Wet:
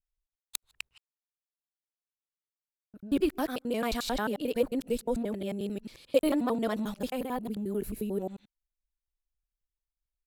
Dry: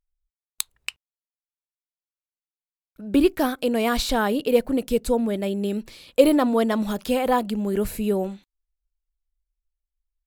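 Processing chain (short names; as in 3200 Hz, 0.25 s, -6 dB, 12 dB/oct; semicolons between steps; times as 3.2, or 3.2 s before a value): local time reversal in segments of 89 ms; spectral gain 7.16–8.21, 470–9100 Hz -6 dB; gain -8.5 dB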